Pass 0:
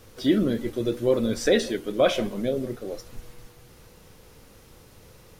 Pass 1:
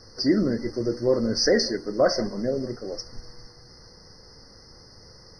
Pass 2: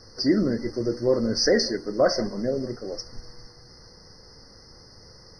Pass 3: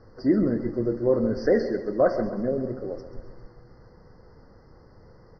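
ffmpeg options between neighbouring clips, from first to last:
-af "lowpass=f=5000:t=q:w=6.2,afftfilt=real='re*eq(mod(floor(b*sr/1024/2100),2),0)':imag='im*eq(mod(floor(b*sr/1024/2100),2),0)':win_size=1024:overlap=0.75"
-af anull
-af "lowpass=1400,aecho=1:1:134|268|402|536|670|804:0.237|0.13|0.0717|0.0395|0.0217|0.0119"

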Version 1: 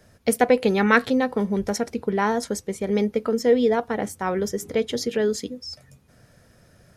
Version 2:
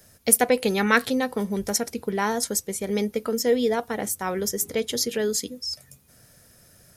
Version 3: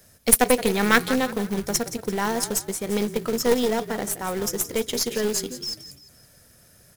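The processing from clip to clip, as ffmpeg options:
-af "aemphasis=mode=production:type=75fm,volume=0.75"
-filter_complex "[0:a]asplit=5[s0][s1][s2][s3][s4];[s1]adelay=172,afreqshift=-34,volume=0.237[s5];[s2]adelay=344,afreqshift=-68,volume=0.0923[s6];[s3]adelay=516,afreqshift=-102,volume=0.0359[s7];[s4]adelay=688,afreqshift=-136,volume=0.0141[s8];[s0][s5][s6][s7][s8]amix=inputs=5:normalize=0,aeval=exprs='0.841*(cos(1*acos(clip(val(0)/0.841,-1,1)))-cos(1*PI/2))+0.075*(cos(6*acos(clip(val(0)/0.841,-1,1)))-cos(6*PI/2))+0.0188*(cos(7*acos(clip(val(0)/0.841,-1,1)))-cos(7*PI/2))':c=same,acrusher=bits=3:mode=log:mix=0:aa=0.000001,volume=1.12"

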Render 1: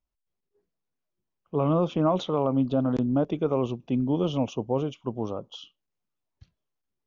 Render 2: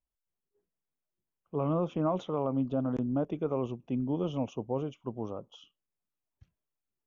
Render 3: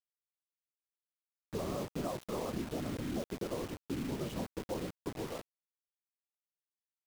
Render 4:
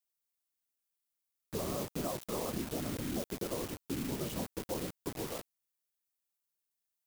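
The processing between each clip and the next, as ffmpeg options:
-af "equalizer=f=4300:t=o:w=0.65:g=-12.5,volume=0.501"
-af "afftfilt=real='hypot(re,im)*cos(2*PI*random(0))':imag='hypot(re,im)*sin(2*PI*random(1))':win_size=512:overlap=0.75,acompressor=threshold=0.0141:ratio=5,acrusher=bits=7:mix=0:aa=0.000001,volume=1.41"
-af "crystalizer=i=1.5:c=0"

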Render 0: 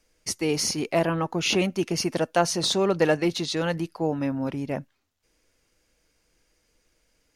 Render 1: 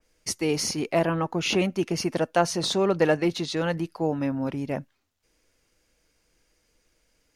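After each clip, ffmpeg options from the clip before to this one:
-af "adynamicequalizer=threshold=0.00891:dfrequency=2900:dqfactor=0.7:tfrequency=2900:tqfactor=0.7:attack=5:release=100:ratio=0.375:range=2:mode=cutabove:tftype=highshelf"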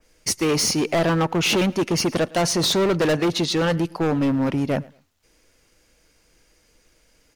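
-af "volume=18.8,asoftclip=hard,volume=0.0531,aecho=1:1:110|220:0.0708|0.017,volume=2.66"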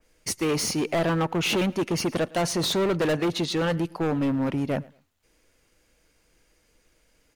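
-af "equalizer=f=5400:t=o:w=0.65:g=-4,volume=0.631"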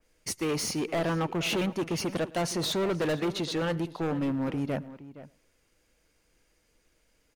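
-filter_complex "[0:a]asplit=2[s0][s1];[s1]adelay=466.5,volume=0.178,highshelf=f=4000:g=-10.5[s2];[s0][s2]amix=inputs=2:normalize=0,volume=0.596"

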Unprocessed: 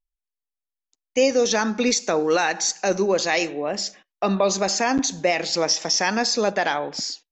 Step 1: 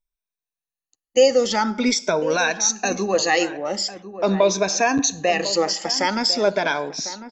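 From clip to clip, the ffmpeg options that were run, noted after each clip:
-filter_complex "[0:a]afftfilt=real='re*pow(10,14/40*sin(2*PI*(1.6*log(max(b,1)*sr/1024/100)/log(2)-(0.45)*(pts-256)/sr)))':imag='im*pow(10,14/40*sin(2*PI*(1.6*log(max(b,1)*sr/1024/100)/log(2)-(0.45)*(pts-256)/sr)))':win_size=1024:overlap=0.75,asplit=2[s0][s1];[s1]adelay=1050,volume=0.224,highshelf=f=4000:g=-23.6[s2];[s0][s2]amix=inputs=2:normalize=0,volume=0.891"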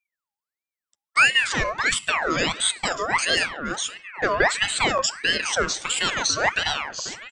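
-af "aeval=exprs='val(0)*sin(2*PI*1600*n/s+1600*0.5/1.5*sin(2*PI*1.5*n/s))':c=same"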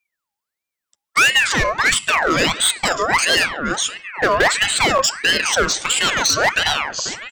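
-af "volume=6.68,asoftclip=hard,volume=0.15,volume=2.24"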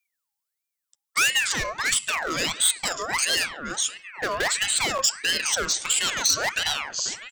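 -af "highshelf=f=3800:g=12,dynaudnorm=f=320:g=9:m=3.76,volume=0.422"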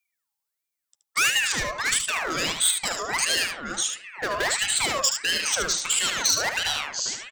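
-af "aecho=1:1:75:0.473,volume=0.891"

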